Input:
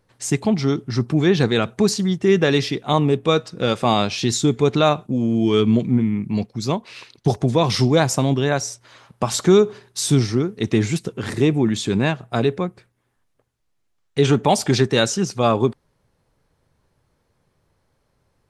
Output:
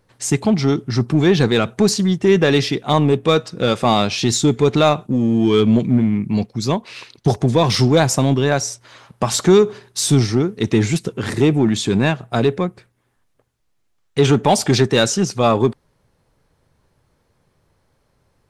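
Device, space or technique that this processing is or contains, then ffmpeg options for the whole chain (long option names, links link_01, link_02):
parallel distortion: -filter_complex "[0:a]asplit=2[link_01][link_02];[link_02]asoftclip=type=hard:threshold=-16.5dB,volume=-5.5dB[link_03];[link_01][link_03]amix=inputs=2:normalize=0"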